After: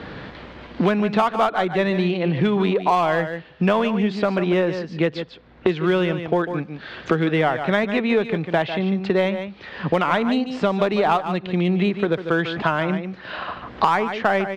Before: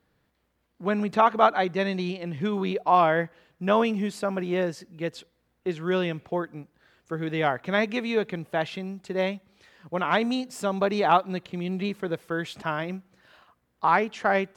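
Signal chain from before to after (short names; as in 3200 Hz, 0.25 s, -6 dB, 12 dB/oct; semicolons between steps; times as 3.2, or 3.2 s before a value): LPF 4100 Hz 24 dB/oct; in parallel at -7 dB: hard clip -23 dBFS, distortion -7 dB; on the sum: echo 0.147 s -11.5 dB; three-band squash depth 100%; gain +2.5 dB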